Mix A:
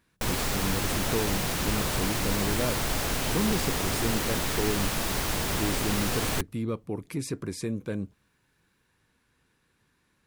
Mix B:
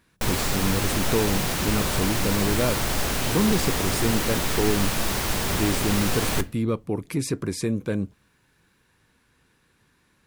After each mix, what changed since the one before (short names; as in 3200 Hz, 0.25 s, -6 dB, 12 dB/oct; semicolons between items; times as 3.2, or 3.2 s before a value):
speech +6.0 dB; reverb: on, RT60 0.45 s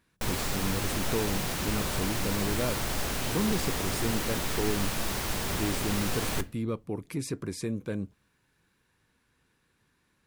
speech -7.0 dB; background -6.0 dB